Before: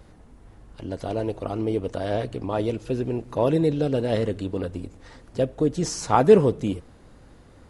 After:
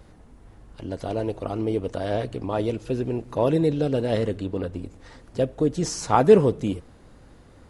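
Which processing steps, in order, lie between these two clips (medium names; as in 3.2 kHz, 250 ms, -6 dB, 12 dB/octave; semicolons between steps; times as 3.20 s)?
4.36–4.86 s: treble shelf 5.4 kHz -6 dB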